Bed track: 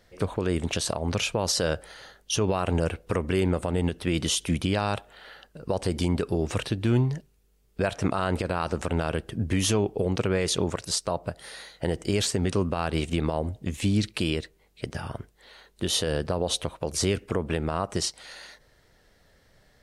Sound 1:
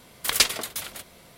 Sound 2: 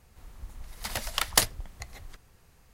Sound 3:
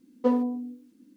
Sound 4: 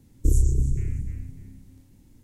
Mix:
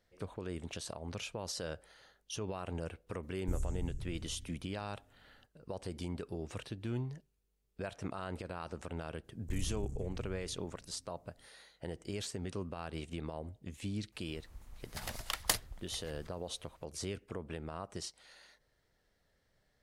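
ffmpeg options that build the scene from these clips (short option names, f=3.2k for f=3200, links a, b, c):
-filter_complex "[4:a]asplit=2[a][b];[0:a]volume=-15dB[c];[a]acompressor=mode=upward:threshold=-44dB:ratio=2.5:attack=3.2:release=140:knee=2.83:detection=peak[d];[b]aeval=exprs='clip(val(0),-1,0.0447)':c=same[e];[d]atrim=end=2.23,asetpts=PTS-STARTPTS,volume=-17dB,afade=t=in:d=0.004:c=hsin,afade=t=out:st=2.226:d=0.004:c=hsin,adelay=3230[f];[e]atrim=end=2.23,asetpts=PTS-STARTPTS,volume=-15.5dB,afade=t=in:d=0.004:c=hsin,afade=t=out:st=2.226:d=0.004:c=hsin,adelay=9240[g];[2:a]atrim=end=2.73,asetpts=PTS-STARTPTS,volume=-9dB,afade=t=in:d=0.004:c=hsin,afade=t=out:st=2.726:d=0.004:c=hsin,adelay=622692S[h];[c][f][g][h]amix=inputs=4:normalize=0"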